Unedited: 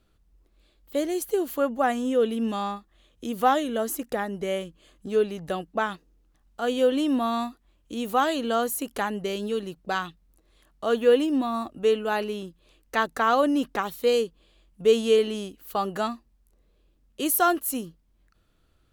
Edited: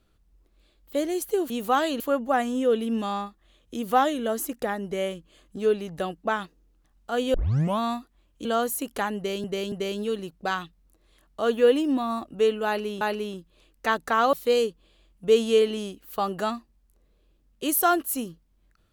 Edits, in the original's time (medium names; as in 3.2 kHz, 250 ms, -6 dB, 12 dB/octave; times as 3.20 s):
6.84 s: tape start 0.45 s
7.95–8.45 s: move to 1.50 s
9.16–9.44 s: loop, 3 plays
12.10–12.45 s: loop, 2 plays
13.42–13.90 s: delete